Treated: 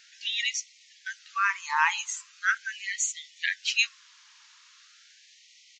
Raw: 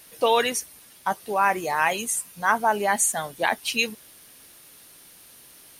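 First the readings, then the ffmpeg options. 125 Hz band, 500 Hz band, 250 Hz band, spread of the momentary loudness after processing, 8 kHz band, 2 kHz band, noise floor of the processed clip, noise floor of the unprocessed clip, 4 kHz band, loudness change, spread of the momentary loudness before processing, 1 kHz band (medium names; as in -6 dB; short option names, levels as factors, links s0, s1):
under -40 dB, under -40 dB, under -40 dB, 10 LU, -5.0 dB, -1.0 dB, -58 dBFS, -51 dBFS, 0.0 dB, -4.0 dB, 9 LU, -8.5 dB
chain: -af "aresample=16000,aresample=44100,bandreject=f=58.72:t=h:w=4,bandreject=f=117.44:t=h:w=4,bandreject=f=176.16:t=h:w=4,bandreject=f=234.88:t=h:w=4,bandreject=f=293.6:t=h:w=4,bandreject=f=352.32:t=h:w=4,bandreject=f=411.04:t=h:w=4,bandreject=f=469.76:t=h:w=4,bandreject=f=528.48:t=h:w=4,bandreject=f=587.2:t=h:w=4,bandreject=f=645.92:t=h:w=4,bandreject=f=704.64:t=h:w=4,bandreject=f=763.36:t=h:w=4,bandreject=f=822.08:t=h:w=4,bandreject=f=880.8:t=h:w=4,afftfilt=real='re*gte(b*sr/1024,840*pow(1900/840,0.5+0.5*sin(2*PI*0.4*pts/sr)))':imag='im*gte(b*sr/1024,840*pow(1900/840,0.5+0.5*sin(2*PI*0.4*pts/sr)))':win_size=1024:overlap=0.75"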